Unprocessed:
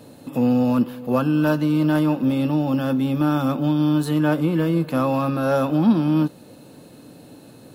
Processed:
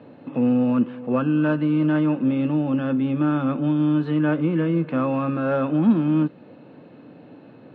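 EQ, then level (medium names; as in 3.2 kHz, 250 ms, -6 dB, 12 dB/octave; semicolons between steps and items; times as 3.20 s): high-pass 130 Hz; low-pass 2.7 kHz 24 dB/octave; dynamic bell 800 Hz, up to -6 dB, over -37 dBFS, Q 1.5; 0.0 dB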